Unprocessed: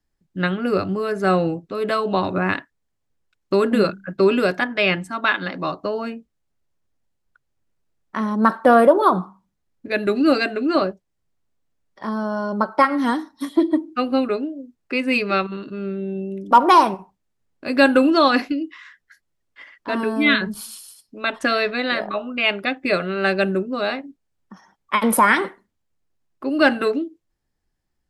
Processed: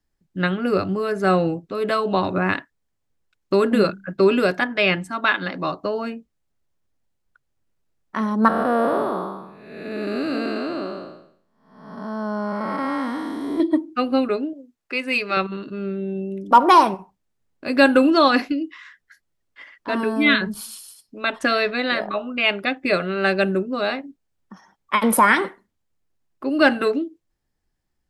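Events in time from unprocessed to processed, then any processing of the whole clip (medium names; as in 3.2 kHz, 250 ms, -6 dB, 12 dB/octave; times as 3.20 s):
8.48–13.60 s: spectral blur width 457 ms
14.53–15.37 s: bass shelf 400 Hz -11 dB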